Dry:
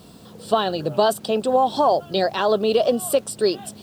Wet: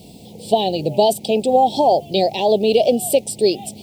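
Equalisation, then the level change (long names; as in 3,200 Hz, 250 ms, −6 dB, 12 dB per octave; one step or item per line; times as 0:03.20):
elliptic band-stop filter 840–2,200 Hz, stop band 60 dB
+4.5 dB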